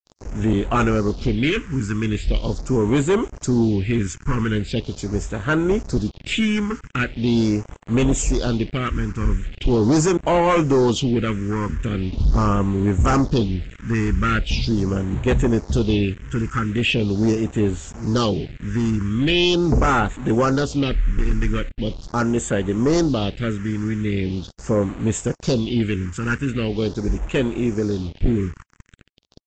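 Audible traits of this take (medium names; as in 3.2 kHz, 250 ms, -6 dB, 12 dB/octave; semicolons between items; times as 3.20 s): a quantiser's noise floor 6-bit, dither none; phasing stages 4, 0.41 Hz, lowest notch 620–4900 Hz; Vorbis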